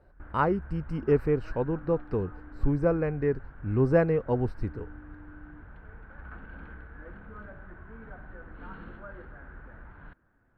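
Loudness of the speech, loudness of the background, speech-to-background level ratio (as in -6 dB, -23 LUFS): -28.5 LUFS, -47.0 LUFS, 18.5 dB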